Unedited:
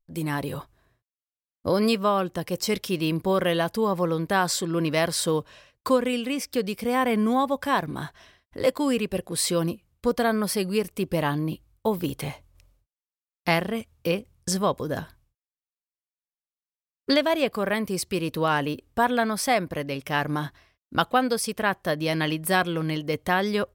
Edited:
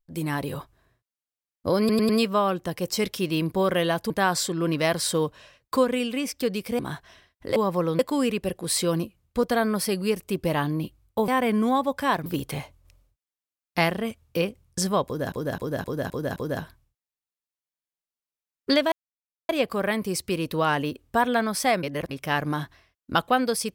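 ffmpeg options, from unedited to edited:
-filter_complex "[0:a]asplit=18[a][b][c][d][e][f][g][h][i][j][k][l][m][n][o][p][q][r];[a]atrim=end=1.892[s];[b]atrim=start=1.788:end=1.892[t];[c]atrim=start=1.788:end=1.892[u];[d]atrim=start=1.788:end=3.802[v];[e]atrim=start=4.228:end=6.922[w];[f]atrim=start=7.898:end=8.672[x];[g]atrim=start=3.798:end=4.232[y];[h]atrim=start=8.668:end=11.962[z];[i]atrim=start=6.918:end=7.902[aa];[j]atrim=start=11.958:end=15.022[ab];[k]atrim=start=14.758:end=15.022[ac];[l]atrim=start=14.758:end=15.022[ad];[m]atrim=start=14.758:end=15.022[ae];[n]atrim=start=14.758:end=15.022[af];[o]atrim=start=14.758:end=17.32,asetpts=PTS-STARTPTS,afade=t=out:st=2.558:d=0.004:c=hsin,apad=pad_dur=0.57[ag];[p]atrim=start=17.32:end=19.662,asetpts=PTS-STARTPTS,afade=t=in:d=0.004:c=hsin[ah];[q]atrim=start=19.658:end=19.942,asetpts=PTS-STARTPTS,areverse[ai];[r]atrim=start=19.938[aj];[s][t]acrossfade=d=0.004:c1=hsin:c2=hsin[ak];[ak][u]acrossfade=d=0.004:c1=hsin:c2=hsin[al];[al][v]acrossfade=d=0.004:c1=hsin:c2=hsin[am];[am][w]acrossfade=d=0.004:c1=hsin:c2=hsin[an];[an][x]acrossfade=d=0.004:c1=hsin:c2=hsin[ao];[ao][y]acrossfade=d=0.004:c1=hsin:c2=hsin[ap];[ap][z]acrossfade=d=0.004:c1=hsin:c2=hsin[aq];[aq][aa]acrossfade=d=0.004:c1=hsin:c2=hsin[ar];[ar][ab]acrossfade=d=0.004:c1=hsin:c2=hsin[as];[as][ac]acrossfade=d=0.004:c1=hsin:c2=hsin[at];[at][ad]acrossfade=d=0.004:c1=hsin:c2=hsin[au];[au][ae]acrossfade=d=0.004:c1=hsin:c2=hsin[av];[av][af]acrossfade=d=0.004:c1=hsin:c2=hsin[aw];[ag][ah]concat=n=2:v=0:a=1[ax];[aw][ax]acrossfade=d=0.004:c1=hsin:c2=hsin[ay];[ay][ai]acrossfade=d=0.004:c1=hsin:c2=hsin[az];[az][aj]acrossfade=d=0.004:c1=hsin:c2=hsin"

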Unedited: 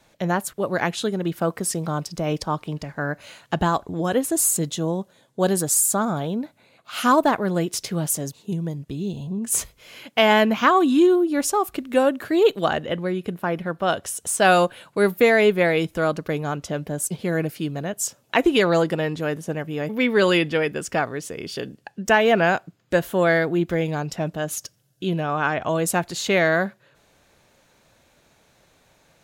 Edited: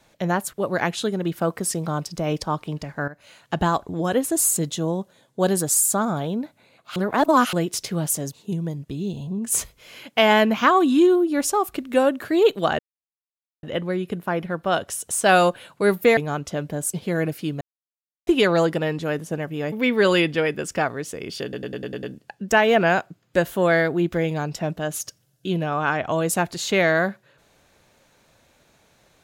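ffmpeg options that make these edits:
-filter_complex "[0:a]asplit=14[a][b][c][d][e][f][g][h][i][j][k][l][m][n];[a]atrim=end=3.08,asetpts=PTS-STARTPTS,afade=t=out:st=3.076:d=0.004:c=hsin:silence=0.16788[o];[b]atrim=start=3.08:end=6.962,asetpts=PTS-STARTPTS,afade=t=in:d=0.56:silence=0.16788[p];[c]atrim=start=6.958:end=7.532,asetpts=PTS-STARTPTS,areverse[q];[d]atrim=start=7.528:end=12.79,asetpts=PTS-STARTPTS,afade=t=out:st=5.258:d=0.004:c=hsin,apad=pad_dur=0.84[r];[e]atrim=start=12.79:end=15.332,asetpts=PTS-STARTPTS,afade=t=in:d=0.004:c=hsin[s];[f]atrim=start=16.338:end=17.78,asetpts=PTS-STARTPTS,afade=t=out:st=1.438:d=0.004:c=hsin[t];[g]atrim=start=17.78:end=18.44,asetpts=PTS-STARTPTS,volume=0[u];[h]atrim=start=18.44:end=21.702,asetpts=PTS-STARTPTS,afade=t=in:d=0.004:c=hsin[v];[i]atrim=start=21.598:end=21.702[w];[j]atrim=start=21.598:end=21.702[x];[k]atrim=start=21.598:end=21.702[y];[l]atrim=start=21.598:end=21.702[z];[m]atrim=start=21.598:end=21.702[aa];[n]atrim=start=21.598[ab];[o][p]concat=n=2:v=0:a=1[ac];[ac][q]acrossfade=d=0.004:c1=hsin:c2=hsin[ad];[r][s]concat=n=2:v=0:a=1[ae];[ad][ae]acrossfade=d=0.004:c1=hsin:c2=hsin[af];[t][u][v]concat=n=3:v=0:a=1[ag];[af][ag]acrossfade=d=0.004:c1=hsin:c2=hsin[ah];[ah][w]acrossfade=d=0.004:c1=hsin:c2=hsin[ai];[ai][x]acrossfade=d=0.004:c1=hsin:c2=hsin[aj];[aj][y]acrossfade=d=0.004:c1=hsin:c2=hsin[ak];[ak][z]acrossfade=d=0.004:c1=hsin:c2=hsin[al];[al][aa]acrossfade=d=0.004:c1=hsin:c2=hsin[am];[am][ab]acrossfade=d=0.004:c1=hsin:c2=hsin"

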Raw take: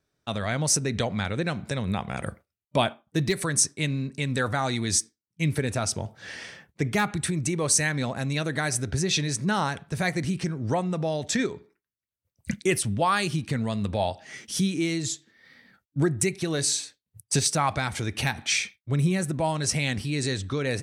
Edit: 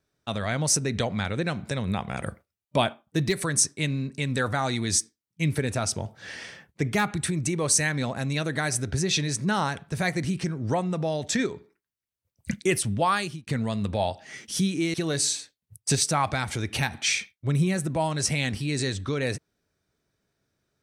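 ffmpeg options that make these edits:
-filter_complex "[0:a]asplit=3[a][b][c];[a]atrim=end=13.47,asetpts=PTS-STARTPTS,afade=t=out:st=13.11:d=0.36[d];[b]atrim=start=13.47:end=14.942,asetpts=PTS-STARTPTS,afade=t=in:d=0.004:c=hsin[e];[c]atrim=start=16.378[f];[d][e]concat=n=2:v=0:a=1[g];[g][f]acrossfade=d=0.004:c1=hsin:c2=hsin"

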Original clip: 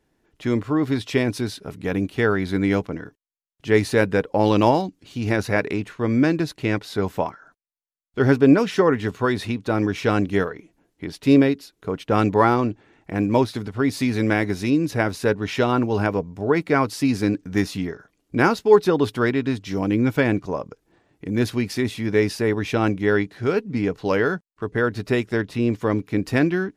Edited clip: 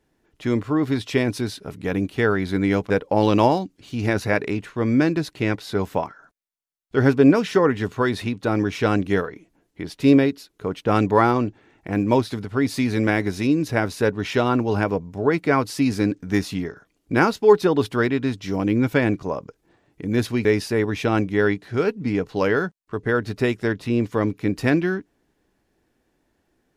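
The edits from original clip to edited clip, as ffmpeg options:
-filter_complex "[0:a]asplit=3[a][b][c];[a]atrim=end=2.902[d];[b]atrim=start=4.128:end=21.682[e];[c]atrim=start=22.138[f];[d][e]acrossfade=d=0.004:c1=hsin:c2=hsin[g];[g][f]acrossfade=d=0.004:c1=hsin:c2=hsin"

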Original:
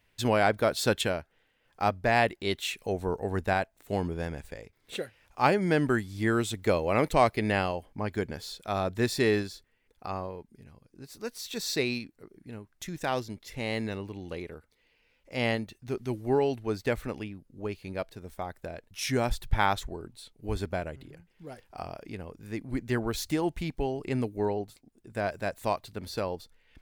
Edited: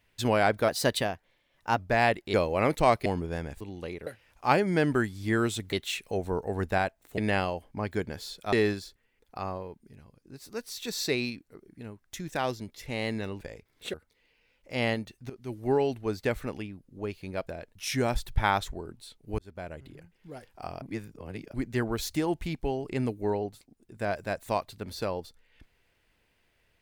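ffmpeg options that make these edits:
-filter_complex "[0:a]asplit=17[a][b][c][d][e][f][g][h][i][j][k][l][m][n][o][p][q];[a]atrim=end=0.684[r];[b]atrim=start=0.68:end=1.93,asetpts=PTS-STARTPTS,asetrate=49833,aresample=44100,atrim=end_sample=48783,asetpts=PTS-STARTPTS[s];[c]atrim=start=1.926:end=2.482[t];[d]atrim=start=6.668:end=7.392[u];[e]atrim=start=3.928:end=4.482[v];[f]atrim=start=14.088:end=14.552[w];[g]atrim=start=5.008:end=6.672[x];[h]atrim=start=2.478:end=3.932[y];[i]atrim=start=7.388:end=8.742[z];[j]atrim=start=9.208:end=14.092[aa];[k]atrim=start=4.478:end=5.012[ab];[l]atrim=start=14.548:end=15.91,asetpts=PTS-STARTPTS,afade=t=out:st=1.358:d=0.004:c=hsin:silence=0.149624[ac];[m]atrim=start=15.91:end=18.082,asetpts=PTS-STARTPTS,afade=t=in:d=0.4:silence=0.149624[ad];[n]atrim=start=18.618:end=20.54,asetpts=PTS-STARTPTS,afade=t=out:st=1.918:d=0.004:c=hsin[ae];[o]atrim=start=20.54:end=21.972,asetpts=PTS-STARTPTS,afade=t=in:d=0.54[af];[p]atrim=start=21.968:end=22.692,asetpts=PTS-STARTPTS,areverse[ag];[q]atrim=start=22.688[ah];[r][s]acrossfade=d=0.004:c1=hsin:c2=hsin[ai];[ai][t]acrossfade=d=0.004:c1=hsin:c2=hsin[aj];[aj][u]acrossfade=d=0.004:c1=hsin:c2=hsin[ak];[ak][v]acrossfade=d=0.004:c1=hsin:c2=hsin[al];[al][w]acrossfade=d=0.004:c1=hsin:c2=hsin[am];[am][x]acrossfade=d=0.004:c1=hsin:c2=hsin[an];[an][y]acrossfade=d=0.004:c1=hsin:c2=hsin[ao];[ao][z]acrossfade=d=0.004:c1=hsin:c2=hsin[ap];[ap][aa]acrossfade=d=0.004:c1=hsin:c2=hsin[aq];[aq][ab]acrossfade=d=0.004:c1=hsin:c2=hsin[ar];[ac][ad]concat=n=2:v=0:a=1[as];[ar][as]acrossfade=d=0.004:c1=hsin:c2=hsin[at];[ae][af]concat=n=2:v=0:a=1[au];[at][au]acrossfade=d=0.004:c1=hsin:c2=hsin[av];[av][ag]acrossfade=d=0.004:c1=hsin:c2=hsin[aw];[aw][ah]acrossfade=d=0.004:c1=hsin:c2=hsin"

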